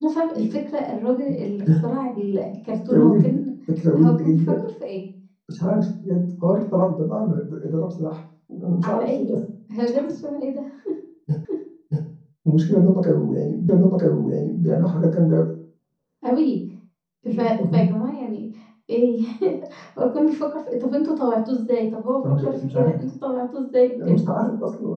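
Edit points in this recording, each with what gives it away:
0:11.45: the same again, the last 0.63 s
0:13.69: the same again, the last 0.96 s

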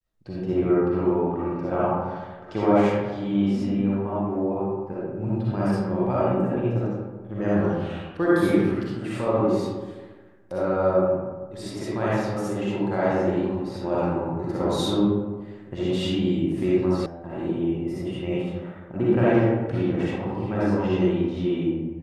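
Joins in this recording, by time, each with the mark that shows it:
0:17.06: cut off before it has died away

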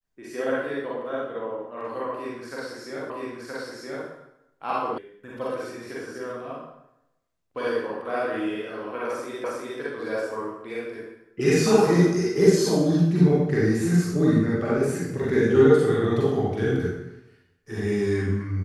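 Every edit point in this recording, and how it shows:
0:03.10: the same again, the last 0.97 s
0:04.98: cut off before it has died away
0:09.44: the same again, the last 0.36 s

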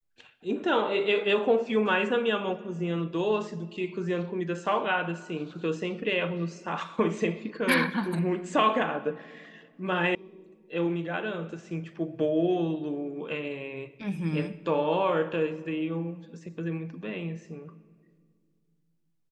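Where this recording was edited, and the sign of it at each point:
0:10.15: cut off before it has died away

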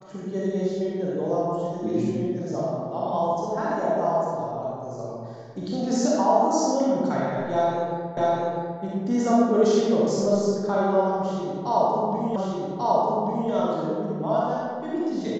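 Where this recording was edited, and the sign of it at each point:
0:08.17: the same again, the last 0.65 s
0:12.36: the same again, the last 1.14 s

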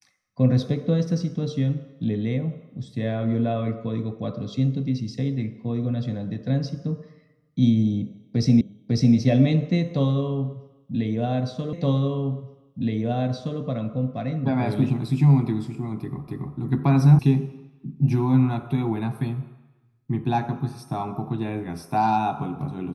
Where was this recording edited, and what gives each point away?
0:08.61: the same again, the last 0.55 s
0:11.73: the same again, the last 1.87 s
0:16.28: the same again, the last 0.28 s
0:17.19: cut off before it has died away

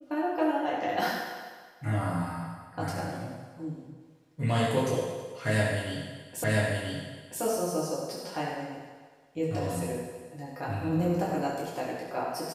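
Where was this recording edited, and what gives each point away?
0:06.44: the same again, the last 0.98 s

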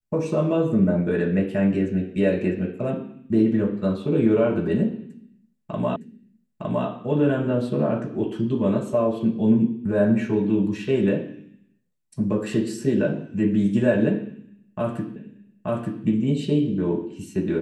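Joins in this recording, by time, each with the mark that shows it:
0:05.96: the same again, the last 0.91 s
0:15.16: the same again, the last 0.88 s

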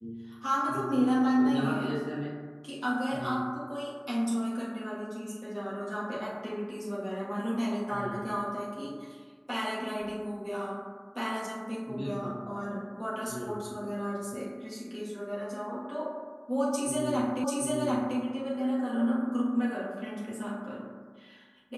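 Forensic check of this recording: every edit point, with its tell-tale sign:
0:17.44: the same again, the last 0.74 s

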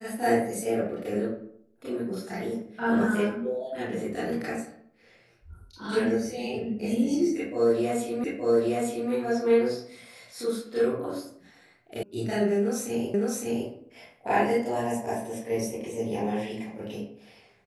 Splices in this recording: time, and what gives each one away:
0:08.24: the same again, the last 0.87 s
0:12.03: cut off before it has died away
0:13.14: the same again, the last 0.56 s

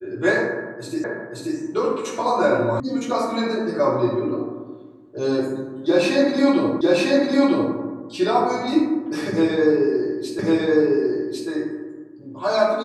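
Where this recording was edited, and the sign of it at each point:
0:01.04: the same again, the last 0.53 s
0:02.80: cut off before it has died away
0:06.81: the same again, the last 0.95 s
0:10.39: the same again, the last 1.1 s

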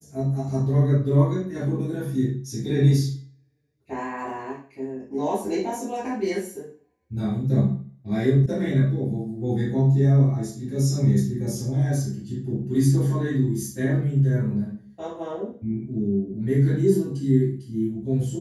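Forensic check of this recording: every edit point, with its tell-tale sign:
0:08.46: cut off before it has died away

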